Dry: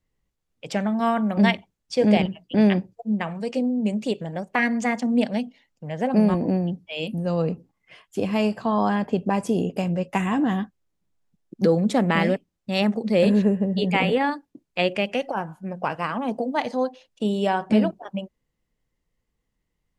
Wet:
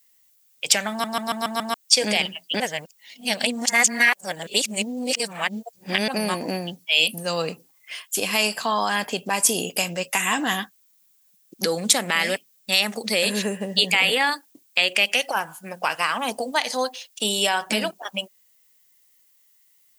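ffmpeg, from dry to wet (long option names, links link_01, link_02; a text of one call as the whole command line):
ffmpeg -i in.wav -filter_complex "[0:a]asplit=9[link_01][link_02][link_03][link_04][link_05][link_06][link_07][link_08][link_09];[link_01]atrim=end=1.042[link_10];[link_02]atrim=start=0.898:end=1.042[link_11];[link_03]atrim=start=0.898:end=1.042[link_12];[link_04]atrim=start=0.898:end=1.042[link_13];[link_05]atrim=start=0.898:end=1.042[link_14];[link_06]atrim=start=0.898:end=1.042[link_15];[link_07]atrim=start=1.738:end=2.602[link_16];[link_08]atrim=start=2.598:end=6.082,asetpts=PTS-STARTPTS,areverse[link_17];[link_09]atrim=start=6.078[link_18];[link_10][link_11]acrossfade=duration=0.004:curve1=hsin:curve2=hsin[link_19];[link_19][link_12]acrossfade=duration=0.004:curve1=hsin:curve2=hsin[link_20];[link_20][link_13]acrossfade=duration=0.004:curve1=hsin:curve2=hsin[link_21];[link_21][link_14]acrossfade=duration=0.004:curve1=hsin:curve2=hsin[link_22];[link_22][link_15]acrossfade=duration=0.004:curve1=hsin:curve2=hsin[link_23];[link_23][link_16]acrossfade=duration=0.004:curve1=hsin:curve2=hsin[link_24];[link_24][link_17]acrossfade=duration=0.004:curve1=hsin:curve2=hsin[link_25];[link_25][link_18]acrossfade=duration=0.004:curve1=hsin:curve2=hsin,aemphasis=mode=production:type=bsi,alimiter=limit=-15.5dB:level=0:latency=1:release=169,tiltshelf=frequency=1100:gain=-9,volume=6dB" out.wav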